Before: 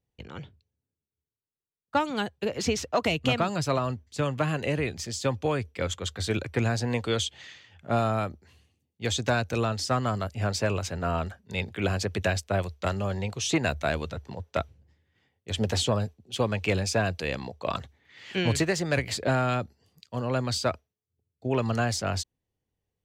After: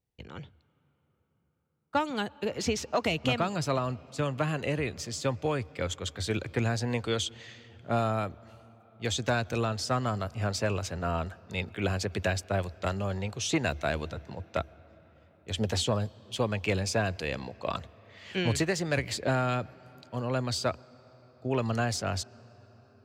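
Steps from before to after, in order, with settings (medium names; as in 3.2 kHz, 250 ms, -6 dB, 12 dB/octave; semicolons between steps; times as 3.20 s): on a send: low-pass 5.1 kHz + reverberation RT60 5.7 s, pre-delay 105 ms, DRR 23 dB; on the sum: trim -2.5 dB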